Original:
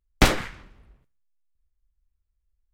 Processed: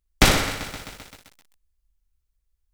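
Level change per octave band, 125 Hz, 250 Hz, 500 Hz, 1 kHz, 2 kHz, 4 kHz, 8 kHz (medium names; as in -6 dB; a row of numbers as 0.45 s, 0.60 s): +2.0 dB, +1.5 dB, +2.0 dB, +2.5 dB, +4.0 dB, +6.0 dB, +7.0 dB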